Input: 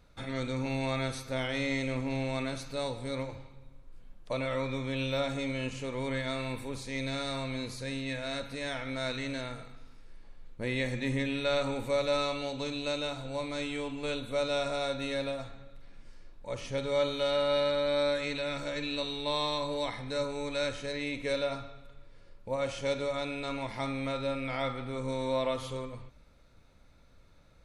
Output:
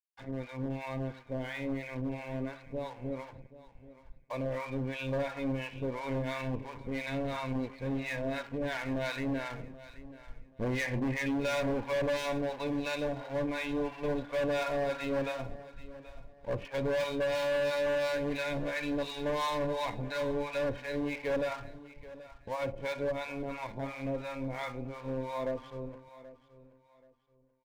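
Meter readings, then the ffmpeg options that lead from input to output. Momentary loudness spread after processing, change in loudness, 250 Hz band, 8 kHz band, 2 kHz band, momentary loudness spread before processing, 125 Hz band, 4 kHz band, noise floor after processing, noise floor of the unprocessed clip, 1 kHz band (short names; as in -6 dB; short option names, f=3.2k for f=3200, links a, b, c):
14 LU, -1.5 dB, +0.5 dB, -5.0 dB, -1.0 dB, 8 LU, -1.0 dB, -8.0 dB, -61 dBFS, -57 dBFS, -1.0 dB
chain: -filter_complex "[0:a]lowpass=2.1k,afftfilt=real='re*gte(hypot(re,im),0.00501)':imag='im*gte(hypot(re,im),0.00501)':win_size=1024:overlap=0.75,aeval=exprs='sgn(val(0))*max(abs(val(0))-0.00316,0)':c=same,acrossover=split=740[a][b];[a]aeval=exprs='val(0)*(1-1/2+1/2*cos(2*PI*2.9*n/s))':c=same[c];[b]aeval=exprs='val(0)*(1-1/2-1/2*cos(2*PI*2.9*n/s))':c=same[d];[c][d]amix=inputs=2:normalize=0,dynaudnorm=f=680:g=17:m=8dB,asoftclip=type=hard:threshold=-30dB,asuperstop=centerf=1300:order=4:qfactor=7.4,aecho=1:1:780|1560|2340:0.141|0.0381|0.0103,volume=2dB"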